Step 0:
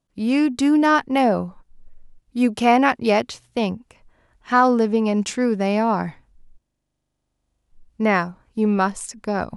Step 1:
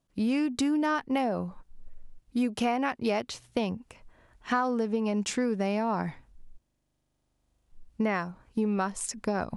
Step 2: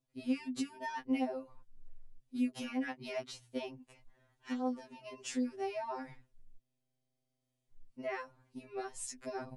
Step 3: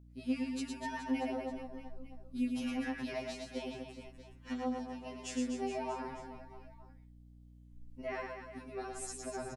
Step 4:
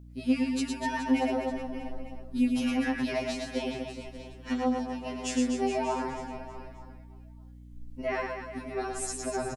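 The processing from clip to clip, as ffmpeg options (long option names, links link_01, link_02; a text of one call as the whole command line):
ffmpeg -i in.wav -af "acompressor=threshold=-25dB:ratio=6" out.wav
ffmpeg -i in.wav -af "equalizer=frequency=1200:width_type=o:width=0.66:gain=-4.5,afftfilt=real='re*2.45*eq(mod(b,6),0)':imag='im*2.45*eq(mod(b,6),0)':win_size=2048:overlap=0.75,volume=-6.5dB" out.wav
ffmpeg -i in.wav -af "aecho=1:1:110|247.5|419.4|634.2|902.8:0.631|0.398|0.251|0.158|0.1,aeval=exprs='val(0)+0.002*(sin(2*PI*60*n/s)+sin(2*PI*2*60*n/s)/2+sin(2*PI*3*60*n/s)/3+sin(2*PI*4*60*n/s)/4+sin(2*PI*5*60*n/s)/5)':channel_layout=same,volume=-1.5dB" out.wav
ffmpeg -i in.wav -af "aecho=1:1:587:0.158,volume=8.5dB" out.wav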